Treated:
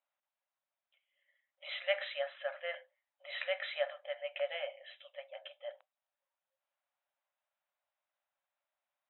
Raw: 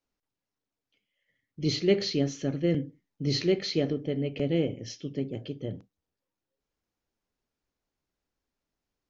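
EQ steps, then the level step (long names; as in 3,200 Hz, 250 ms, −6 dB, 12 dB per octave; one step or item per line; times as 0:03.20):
linear-phase brick-wall band-pass 530–4,000 Hz
dynamic equaliser 1,600 Hz, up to +7 dB, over −60 dBFS, Q 2.4
high-frequency loss of the air 200 metres
+1.5 dB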